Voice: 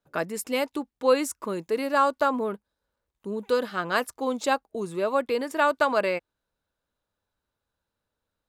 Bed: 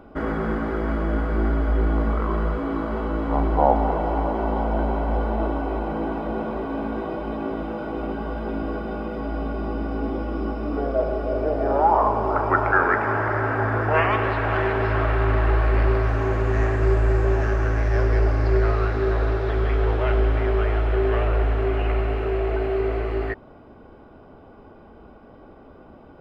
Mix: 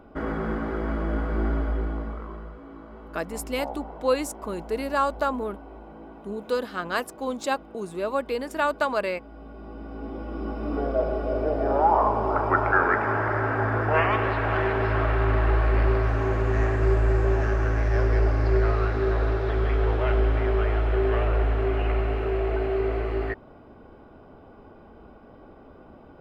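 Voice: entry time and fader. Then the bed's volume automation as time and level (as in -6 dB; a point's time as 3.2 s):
3.00 s, -2.0 dB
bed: 1.58 s -3.5 dB
2.54 s -17.5 dB
9.3 s -17.5 dB
10.72 s -2 dB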